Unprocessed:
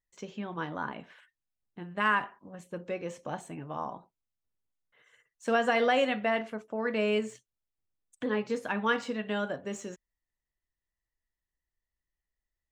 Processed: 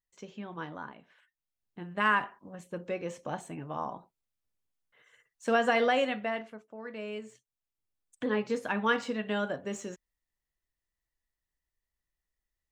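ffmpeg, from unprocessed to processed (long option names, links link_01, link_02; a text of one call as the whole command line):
ffmpeg -i in.wav -af "volume=20dB,afade=type=out:start_time=0.67:duration=0.34:silence=0.398107,afade=type=in:start_time=1.01:duration=0.87:silence=0.237137,afade=type=out:start_time=5.73:duration=0.94:silence=0.266073,afade=type=in:start_time=7.21:duration=1.06:silence=0.266073" out.wav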